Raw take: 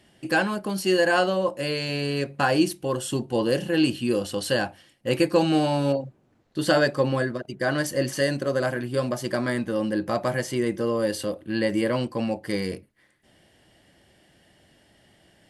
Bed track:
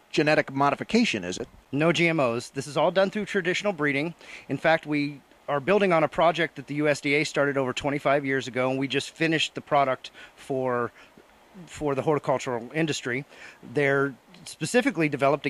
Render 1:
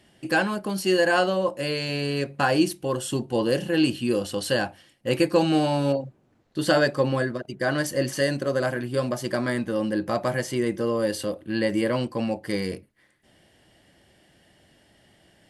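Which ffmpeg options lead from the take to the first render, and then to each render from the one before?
ffmpeg -i in.wav -af anull out.wav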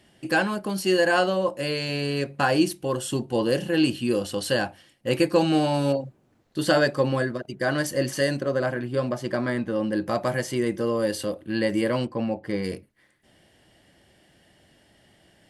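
ffmpeg -i in.wav -filter_complex "[0:a]asettb=1/sr,asplit=3[link_01][link_02][link_03];[link_01]atrim=end=5.744[link_04];[link_02]atrim=start=5.74:end=6.63,asetpts=PTS-STARTPTS,afade=type=in:duration=0.004:curve=qsin,afade=type=out:start_time=0.886:duration=0.004:curve=qsin,highshelf=frequency=6000:gain=5[link_05];[link_03]atrim=start=6.626[link_06];[link_04][link_05]acrossfade=duration=0.004:curve1=hsin:curve2=qsin[link_07];[link_07][link_06]acrossfade=duration=0.004:curve1=qsin:curve2=hsin,asettb=1/sr,asplit=3[link_08][link_09][link_10];[link_08]atrim=end=8.404[link_11];[link_09]atrim=start=8.4:end=9.93,asetpts=PTS-STARTPTS,afade=type=in:duration=0.004:curve=qsin,afade=type=out:start_time=1.526:duration=0.004:curve=qsin,lowpass=frequency=3100:poles=1[link_12];[link_10]atrim=start=9.926[link_13];[link_11][link_12]acrossfade=duration=0.004:curve1=hsin:curve2=qsin[link_14];[link_14][link_13]acrossfade=duration=0.004:curve1=qsin:curve2=hsin,asplit=3[link_15][link_16][link_17];[link_15]afade=type=out:start_time=12.05:duration=0.02[link_18];[link_16]lowpass=frequency=1800:poles=1,afade=type=in:start_time=12.05:duration=0.02,afade=type=out:start_time=12.63:duration=0.02[link_19];[link_17]afade=type=in:start_time=12.63:duration=0.02[link_20];[link_18][link_19][link_20]amix=inputs=3:normalize=0" out.wav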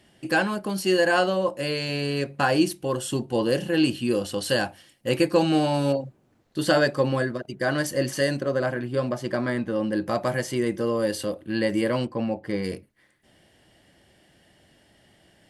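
ffmpeg -i in.wav -filter_complex "[0:a]asettb=1/sr,asplit=3[link_01][link_02][link_03];[link_01]atrim=end=4.494[link_04];[link_02]atrim=start=4.49:end=5.11,asetpts=PTS-STARTPTS,afade=type=in:duration=0.004:curve=qsin,afade=type=out:start_time=0.616:duration=0.004:curve=qsin,highshelf=frequency=5200:gain=6.5[link_05];[link_03]atrim=start=5.106[link_06];[link_04][link_05]acrossfade=duration=0.004:curve1=hsin:curve2=qsin[link_07];[link_07][link_06]acrossfade=duration=0.004:curve1=qsin:curve2=hsin" out.wav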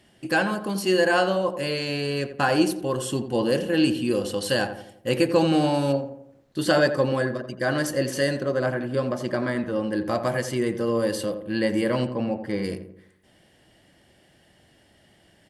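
ffmpeg -i in.wav -filter_complex "[0:a]asplit=2[link_01][link_02];[link_02]adelay=86,lowpass=frequency=1400:poles=1,volume=-9dB,asplit=2[link_03][link_04];[link_04]adelay=86,lowpass=frequency=1400:poles=1,volume=0.5,asplit=2[link_05][link_06];[link_06]adelay=86,lowpass=frequency=1400:poles=1,volume=0.5,asplit=2[link_07][link_08];[link_08]adelay=86,lowpass=frequency=1400:poles=1,volume=0.5,asplit=2[link_09][link_10];[link_10]adelay=86,lowpass=frequency=1400:poles=1,volume=0.5,asplit=2[link_11][link_12];[link_12]adelay=86,lowpass=frequency=1400:poles=1,volume=0.5[link_13];[link_01][link_03][link_05][link_07][link_09][link_11][link_13]amix=inputs=7:normalize=0" out.wav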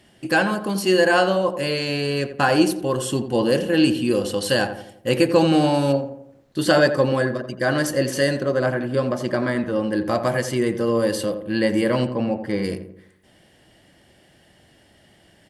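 ffmpeg -i in.wav -af "volume=3.5dB" out.wav

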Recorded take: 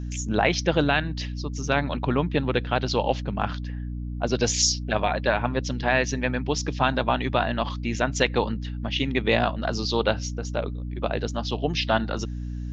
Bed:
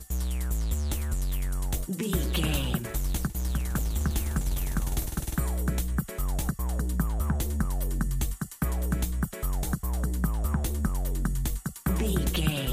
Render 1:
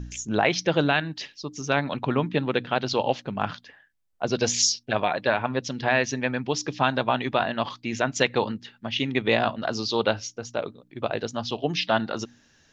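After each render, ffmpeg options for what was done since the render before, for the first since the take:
ffmpeg -i in.wav -af "bandreject=frequency=60:width_type=h:width=4,bandreject=frequency=120:width_type=h:width=4,bandreject=frequency=180:width_type=h:width=4,bandreject=frequency=240:width_type=h:width=4,bandreject=frequency=300:width_type=h:width=4" out.wav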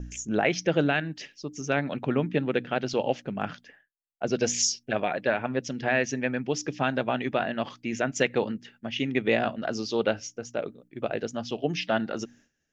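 ffmpeg -i in.wav -af "agate=range=-33dB:threshold=-49dB:ratio=3:detection=peak,equalizer=frequency=100:width_type=o:width=0.67:gain=-7,equalizer=frequency=1000:width_type=o:width=0.67:gain=-10,equalizer=frequency=4000:width_type=o:width=0.67:gain=-11" out.wav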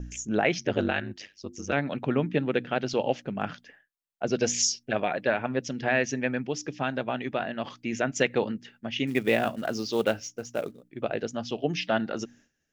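ffmpeg -i in.wav -filter_complex "[0:a]asettb=1/sr,asplit=3[link_01][link_02][link_03];[link_01]atrim=end=0.584[link_04];[link_02]atrim=start=0.58:end=1.73,asetpts=PTS-STARTPTS,afade=type=in:duration=0.004:curve=qsin,afade=type=out:start_time=1.146:duration=0.004:curve=qsin,aeval=exprs='val(0)*sin(2*PI*49*n/s)':channel_layout=same[link_05];[link_03]atrim=start=1.726[link_06];[link_04][link_05]acrossfade=duration=0.004:curve1=hsin:curve2=qsin[link_07];[link_07][link_06]acrossfade=duration=0.004:curve1=qsin:curve2=hsin,asettb=1/sr,asplit=3[link_08][link_09][link_10];[link_08]atrim=end=9.074[link_11];[link_09]atrim=start=9.07:end=10.83,asetpts=PTS-STARTPTS,afade=type=in:duration=0.004:curve=qsin,afade=type=out:start_time=1.756:duration=0.004:curve=qsin,acrusher=bits=6:mode=log:mix=0:aa=0.000001[link_12];[link_10]atrim=start=10.826[link_13];[link_11][link_12]acrossfade=duration=0.004:curve1=hsin:curve2=qsin[link_14];[link_14][link_13]acrossfade=duration=0.004:curve1=qsin:curve2=hsin,asplit=3[link_15][link_16][link_17];[link_15]atrim=end=6.472[link_18];[link_16]atrim=start=6.468:end=7.642,asetpts=PTS-STARTPTS,volume=-3dB[link_19];[link_17]atrim=start=7.638[link_20];[link_18][link_19]acrossfade=duration=0.004:curve1=hsin:curve2=hsin[link_21];[link_21][link_20]acrossfade=duration=0.004:curve1=hsin:curve2=hsin" out.wav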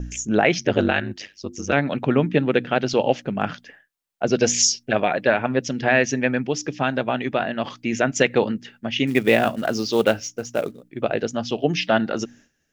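ffmpeg -i in.wav -af "volume=7dB,alimiter=limit=-3dB:level=0:latency=1" out.wav

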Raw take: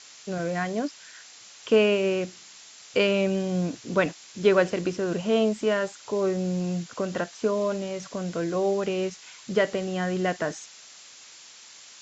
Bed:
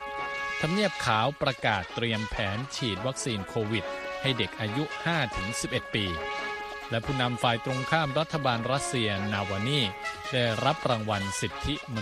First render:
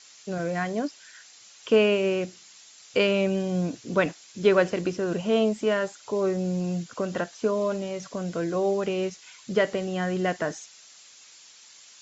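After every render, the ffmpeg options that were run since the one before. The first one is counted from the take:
ffmpeg -i in.wav -af "afftdn=noise_reduction=6:noise_floor=-49" out.wav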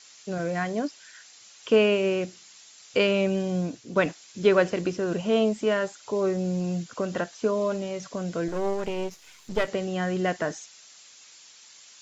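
ffmpeg -i in.wav -filter_complex "[0:a]asettb=1/sr,asplit=3[link_01][link_02][link_03];[link_01]atrim=end=8.484[link_04];[link_02]atrim=start=8.48:end=9.68,asetpts=PTS-STARTPTS,afade=type=in:duration=0.004:curve=qsin,afade=type=out:start_time=1.196:duration=0.004:curve=qsin,aeval=exprs='if(lt(val(0),0),0.251*val(0),val(0))':channel_layout=same[link_05];[link_03]atrim=start=9.676[link_06];[link_04][link_05]acrossfade=duration=0.004:curve1=hsin:curve2=qsin[link_07];[link_07][link_06]acrossfade=duration=0.004:curve1=qsin:curve2=hsin,asplit=2[link_08][link_09];[link_08]atrim=end=3.96,asetpts=PTS-STARTPTS,afade=type=out:start_time=3.5:duration=0.46:silence=0.473151[link_10];[link_09]atrim=start=3.96,asetpts=PTS-STARTPTS,afade=type=in:duration=0.004:curve=hsin:silence=0.473151[link_11];[link_10][link_11]concat=n=2:v=0:a=1" out.wav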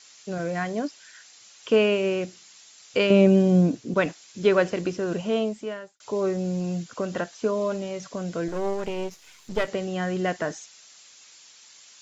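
ffmpeg -i in.wav -filter_complex "[0:a]asettb=1/sr,asplit=3[link_01][link_02][link_03];[link_01]atrim=end=3.104[link_04];[link_02]atrim=start=3.1:end=3.94,asetpts=PTS-STARTPTS,afade=type=in:duration=0.004:curve=qsin,afade=type=out:start_time=0.836:duration=0.004:curve=qsin,equalizer=frequency=240:width_type=o:width=2.8:gain=10[link_05];[link_03]atrim=start=3.936[link_06];[link_04][link_05]acrossfade=duration=0.004:curve1=hsin:curve2=qsin[link_07];[link_07][link_06]acrossfade=duration=0.004:curve1=qsin:curve2=hsin,asplit=2[link_08][link_09];[link_08]atrim=end=6,asetpts=PTS-STARTPTS,afade=type=out:start_time=5.18:duration=0.82[link_10];[link_09]atrim=start=6,asetpts=PTS-STARTPTS,afade=type=in:duration=0.004:curve=hsin[link_11];[link_10][link_11]concat=n=2:v=0:a=1" out.wav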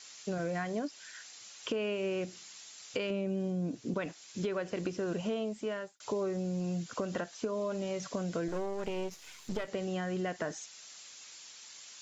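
ffmpeg -i in.wav -af "alimiter=limit=-18.5dB:level=0:latency=1:release=470,acompressor=threshold=-31dB:ratio=6" out.wav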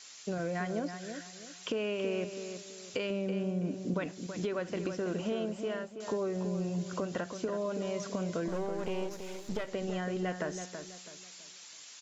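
ffmpeg -i in.wav -filter_complex "[0:a]asplit=2[link_01][link_02];[link_02]adelay=328,lowpass=frequency=2900:poles=1,volume=-8dB,asplit=2[link_03][link_04];[link_04]adelay=328,lowpass=frequency=2900:poles=1,volume=0.35,asplit=2[link_05][link_06];[link_06]adelay=328,lowpass=frequency=2900:poles=1,volume=0.35,asplit=2[link_07][link_08];[link_08]adelay=328,lowpass=frequency=2900:poles=1,volume=0.35[link_09];[link_01][link_03][link_05][link_07][link_09]amix=inputs=5:normalize=0" out.wav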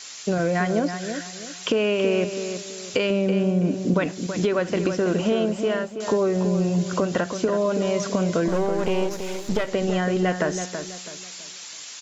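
ffmpeg -i in.wav -af "volume=12dB" out.wav

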